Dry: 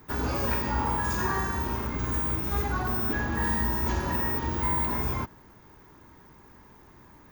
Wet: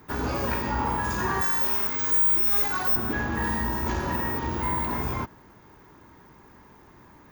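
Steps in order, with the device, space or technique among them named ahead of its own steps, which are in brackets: 1.41–2.96 s: tilt EQ +3.5 dB/octave; tube preamp driven hard (valve stage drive 16 dB, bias 0.35; bass shelf 94 Hz -5 dB; treble shelf 5.1 kHz -4 dB); trim +3.5 dB

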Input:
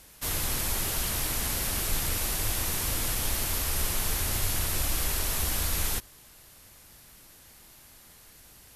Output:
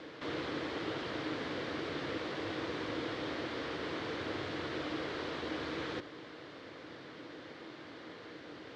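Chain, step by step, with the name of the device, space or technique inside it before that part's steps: high-pass 210 Hz 12 dB/octave; guitar amplifier (valve stage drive 45 dB, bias 0.55; tone controls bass +5 dB, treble -10 dB; cabinet simulation 94–4200 Hz, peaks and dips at 200 Hz -8 dB, 310 Hz +10 dB, 480 Hz +8 dB, 840 Hz -4 dB, 2.6 kHz -6 dB); trim +12.5 dB

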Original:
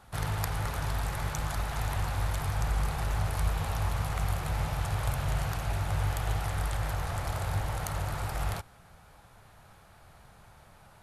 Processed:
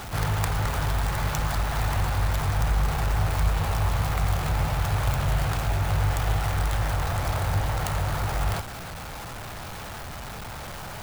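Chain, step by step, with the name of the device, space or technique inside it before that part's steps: early CD player with a faulty converter (jump at every zero crossing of -36.5 dBFS; sampling jitter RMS 0.022 ms); trim +4.5 dB

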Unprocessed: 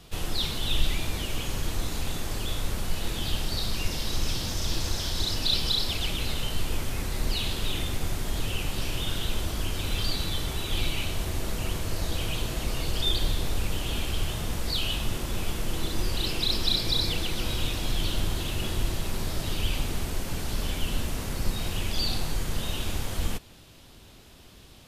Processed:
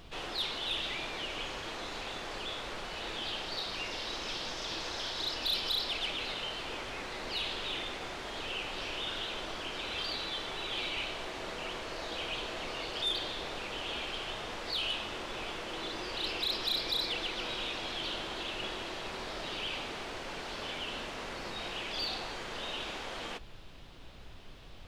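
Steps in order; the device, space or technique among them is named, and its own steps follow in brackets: aircraft cabin announcement (band-pass 450–3700 Hz; saturation -24.5 dBFS, distortion -20 dB; brown noise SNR 11 dB)

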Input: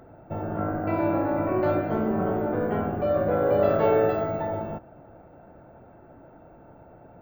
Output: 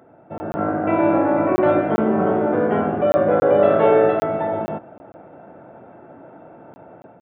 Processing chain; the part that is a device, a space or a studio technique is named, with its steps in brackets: call with lost packets (high-pass 170 Hz 12 dB/octave; resampled via 8 kHz; level rider gain up to 8 dB; lost packets of 20 ms random)

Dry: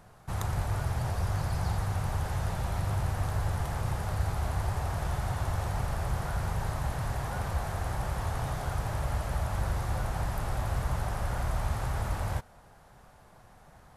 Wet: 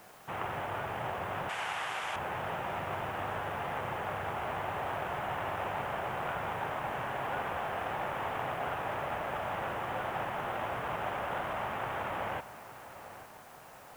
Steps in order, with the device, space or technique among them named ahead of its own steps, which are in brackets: army field radio (band-pass 310–2900 Hz; CVSD coder 16 kbps; white noise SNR 24 dB); 1.49–2.16 s: frequency weighting ITU-R 468; filtered feedback delay 855 ms, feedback 47%, low-pass 3.5 kHz, level -14 dB; trim +3.5 dB

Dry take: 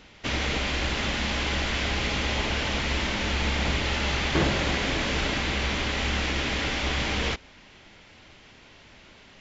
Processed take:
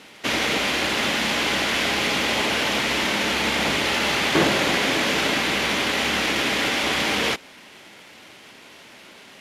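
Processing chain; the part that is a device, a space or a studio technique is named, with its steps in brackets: early wireless headset (high-pass 210 Hz 12 dB/octave; CVSD coder 64 kbps); trim +6.5 dB

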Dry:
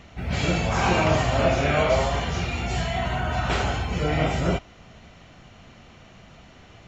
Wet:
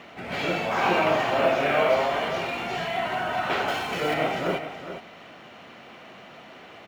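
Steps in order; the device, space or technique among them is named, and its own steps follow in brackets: phone line with mismatched companding (band-pass 300–3400 Hz; companding laws mixed up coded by mu); 3.68–4.14 s: treble shelf 3.6 kHz +10.5 dB; delay 414 ms -10.5 dB

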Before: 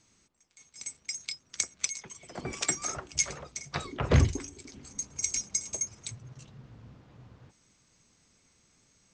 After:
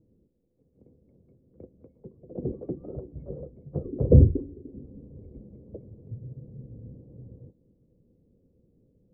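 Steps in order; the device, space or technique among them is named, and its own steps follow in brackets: under water (low-pass 410 Hz 24 dB/octave; peaking EQ 510 Hz +11 dB 0.39 oct); trim +7 dB

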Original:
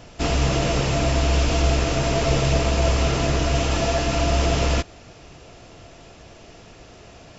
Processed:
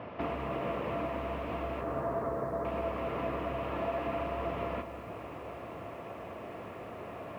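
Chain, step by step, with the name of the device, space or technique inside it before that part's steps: 1.81–2.65 s: steep low-pass 1.8 kHz 48 dB/octave; bass amplifier (compression 4:1, threshold -35 dBFS, peak gain reduction 16.5 dB; cabinet simulation 88–2300 Hz, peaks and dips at 90 Hz -4 dB, 140 Hz -9 dB, 570 Hz +4 dB, 1.1 kHz +8 dB, 1.5 kHz -4 dB); two-band feedback delay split 860 Hz, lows 522 ms, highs 148 ms, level -14.5 dB; bit-crushed delay 205 ms, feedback 55%, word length 10-bit, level -10 dB; trim +2 dB

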